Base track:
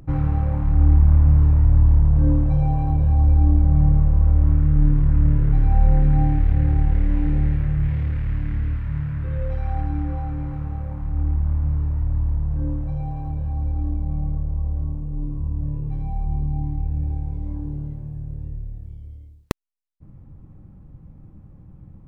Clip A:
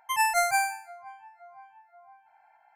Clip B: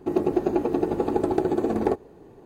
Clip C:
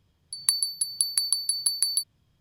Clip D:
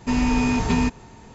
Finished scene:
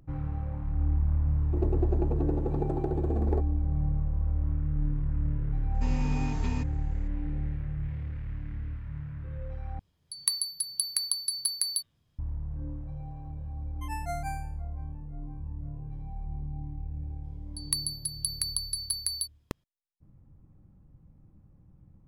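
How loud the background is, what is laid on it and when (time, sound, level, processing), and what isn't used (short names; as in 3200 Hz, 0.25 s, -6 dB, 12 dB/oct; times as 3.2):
base track -12.5 dB
1.46 add B -13.5 dB, fades 0.10 s + tilt shelf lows +5.5 dB, about 1300 Hz
5.74 add D -15 dB
9.79 replace with C -4.5 dB + de-hum 116.5 Hz, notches 32
13.72 add A -18 dB + bell 710 Hz +9 dB 0.57 oct
17.24 add C -6.5 dB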